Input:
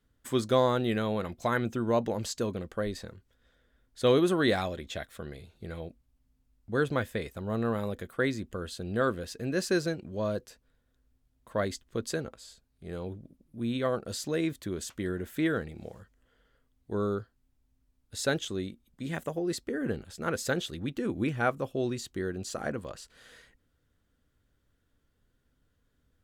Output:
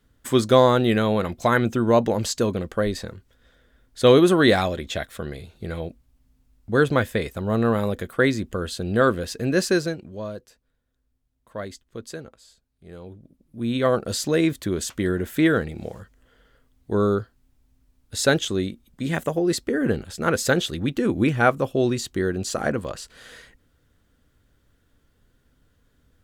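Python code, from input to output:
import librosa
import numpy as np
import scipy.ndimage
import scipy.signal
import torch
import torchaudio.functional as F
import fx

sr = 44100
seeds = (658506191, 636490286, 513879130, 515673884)

y = fx.gain(x, sr, db=fx.line((9.58, 9.0), (10.36, -3.0), (13.07, -3.0), (13.9, 9.5)))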